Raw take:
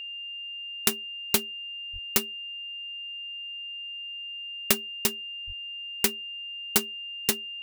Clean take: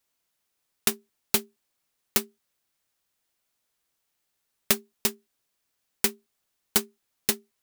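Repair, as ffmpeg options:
-filter_complex "[0:a]bandreject=f=2.8k:w=30,asplit=3[a][b][c];[a]afade=t=out:st=1.92:d=0.02[d];[b]highpass=f=140:w=0.5412,highpass=f=140:w=1.3066,afade=t=in:st=1.92:d=0.02,afade=t=out:st=2.04:d=0.02[e];[c]afade=t=in:st=2.04:d=0.02[f];[d][e][f]amix=inputs=3:normalize=0,asplit=3[g][h][i];[g]afade=t=out:st=5.46:d=0.02[j];[h]highpass=f=140:w=0.5412,highpass=f=140:w=1.3066,afade=t=in:st=5.46:d=0.02,afade=t=out:st=5.58:d=0.02[k];[i]afade=t=in:st=5.58:d=0.02[l];[j][k][l]amix=inputs=3:normalize=0"

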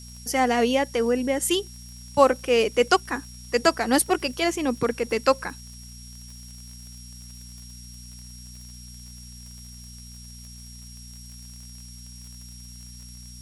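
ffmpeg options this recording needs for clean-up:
-af "adeclick=t=4,bandreject=f=60.2:t=h:w=4,bandreject=f=120.4:t=h:w=4,bandreject=f=180.6:t=h:w=4,bandreject=f=240.8:t=h:w=4,bandreject=f=5.6k:w=30,afftdn=nr=27:nf=-43"

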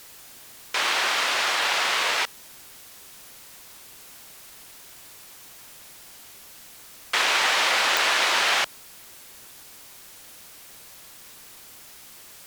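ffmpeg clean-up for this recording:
-af "adeclick=t=4,afwtdn=0.005"

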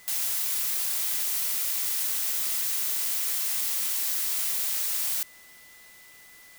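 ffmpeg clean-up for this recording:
-af "bandreject=f=2k:w=30,afwtdn=0.0022"

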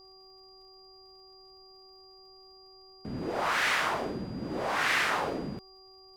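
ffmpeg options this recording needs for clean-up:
-af "adeclick=t=4,bandreject=f=380.3:t=h:w=4,bandreject=f=760.6:t=h:w=4,bandreject=f=1.1409k:t=h:w=4,bandreject=f=4.8k:w=30,agate=range=-21dB:threshold=-46dB"

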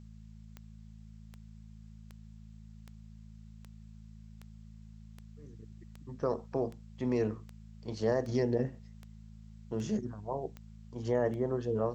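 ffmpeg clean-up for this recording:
-af "adeclick=t=4,bandreject=f=54.2:t=h:w=4,bandreject=f=108.4:t=h:w=4,bandreject=f=162.6:t=h:w=4,bandreject=f=216.8:t=h:w=4,agate=range=-21dB:threshold=-43dB"

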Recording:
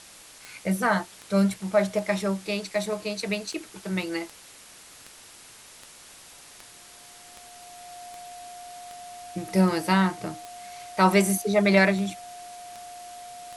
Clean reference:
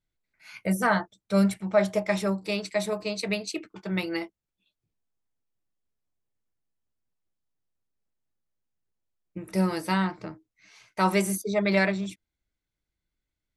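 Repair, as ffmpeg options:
-af "adeclick=t=4,bandreject=f=710:w=30,afwtdn=0.005,asetnsamples=n=441:p=0,asendcmd='5.47 volume volume -4dB',volume=0dB"

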